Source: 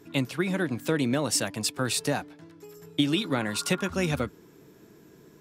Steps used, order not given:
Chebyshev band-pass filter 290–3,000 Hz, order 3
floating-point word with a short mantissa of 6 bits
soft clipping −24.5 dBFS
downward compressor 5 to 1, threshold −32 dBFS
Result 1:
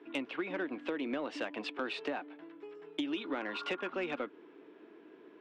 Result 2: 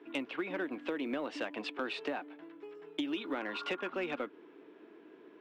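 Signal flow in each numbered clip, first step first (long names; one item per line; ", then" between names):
floating-point word with a short mantissa, then Chebyshev band-pass filter, then downward compressor, then soft clipping
Chebyshev band-pass filter, then downward compressor, then soft clipping, then floating-point word with a short mantissa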